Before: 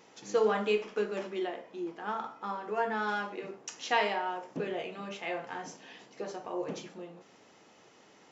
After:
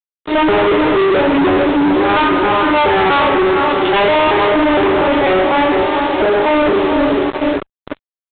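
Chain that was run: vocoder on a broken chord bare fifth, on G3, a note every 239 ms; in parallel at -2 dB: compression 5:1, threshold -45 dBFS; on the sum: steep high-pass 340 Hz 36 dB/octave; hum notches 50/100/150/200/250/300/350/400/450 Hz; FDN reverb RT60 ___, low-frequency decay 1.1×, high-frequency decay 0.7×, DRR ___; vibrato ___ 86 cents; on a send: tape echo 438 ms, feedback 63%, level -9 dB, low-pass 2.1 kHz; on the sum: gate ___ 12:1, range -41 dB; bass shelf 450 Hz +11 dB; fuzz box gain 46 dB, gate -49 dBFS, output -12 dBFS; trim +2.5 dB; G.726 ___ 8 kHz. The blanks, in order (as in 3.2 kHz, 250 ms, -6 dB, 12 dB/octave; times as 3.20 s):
3.3 s, 6.5 dB, 0.52 Hz, -49 dBFS, 24 kbps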